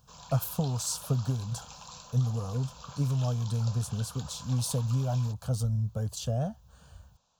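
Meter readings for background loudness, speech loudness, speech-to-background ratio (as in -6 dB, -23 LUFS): -47.0 LUFS, -31.5 LUFS, 15.5 dB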